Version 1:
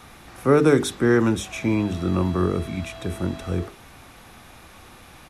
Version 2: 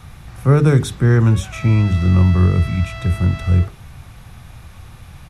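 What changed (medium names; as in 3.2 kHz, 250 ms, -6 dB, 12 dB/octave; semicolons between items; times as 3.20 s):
background: remove two resonant band-passes 1.6 kHz, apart 2.4 oct; master: add resonant low shelf 190 Hz +12.5 dB, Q 1.5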